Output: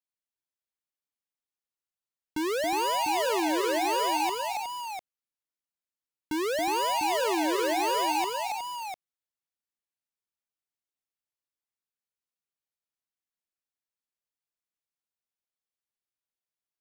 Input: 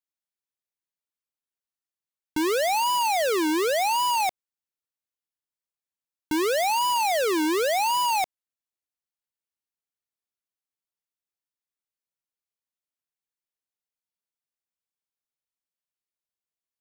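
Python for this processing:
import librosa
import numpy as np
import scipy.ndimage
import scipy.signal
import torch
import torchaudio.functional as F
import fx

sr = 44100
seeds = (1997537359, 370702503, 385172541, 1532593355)

p1 = fx.high_shelf(x, sr, hz=8300.0, db=-3.5)
p2 = p1 + fx.echo_multitap(p1, sr, ms=(276, 365, 699), db=(-6.0, -9.0, -7.5), dry=0)
y = p2 * 10.0 ** (-5.0 / 20.0)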